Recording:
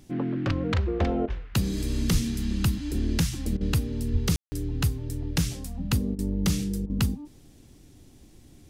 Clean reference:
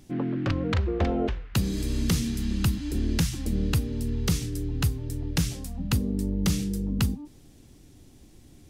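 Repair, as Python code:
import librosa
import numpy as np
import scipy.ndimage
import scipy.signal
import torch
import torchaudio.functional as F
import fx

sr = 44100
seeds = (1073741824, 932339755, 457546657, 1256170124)

y = fx.fix_deplosive(x, sr, at_s=(2.12, 4.12))
y = fx.fix_ambience(y, sr, seeds[0], print_start_s=7.31, print_end_s=7.81, start_s=4.36, end_s=4.52)
y = fx.fix_interpolate(y, sr, at_s=(1.26, 3.57, 6.15, 6.86), length_ms=37.0)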